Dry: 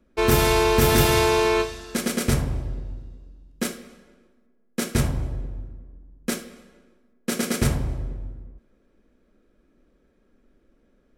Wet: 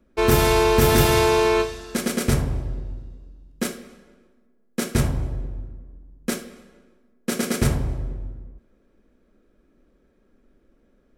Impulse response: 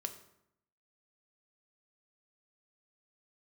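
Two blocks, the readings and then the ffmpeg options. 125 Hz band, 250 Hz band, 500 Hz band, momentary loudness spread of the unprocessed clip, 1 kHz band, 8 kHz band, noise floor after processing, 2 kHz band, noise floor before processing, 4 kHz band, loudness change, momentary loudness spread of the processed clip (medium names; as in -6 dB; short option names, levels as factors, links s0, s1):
+1.5 dB, +1.0 dB, +2.0 dB, 20 LU, +1.0 dB, 0.0 dB, -62 dBFS, 0.0 dB, -64 dBFS, 0.0 dB, +1.0 dB, 19 LU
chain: -filter_complex "[0:a]asplit=2[s0][s1];[1:a]atrim=start_sample=2205,lowpass=2100[s2];[s1][s2]afir=irnorm=-1:irlink=0,volume=0.224[s3];[s0][s3]amix=inputs=2:normalize=0"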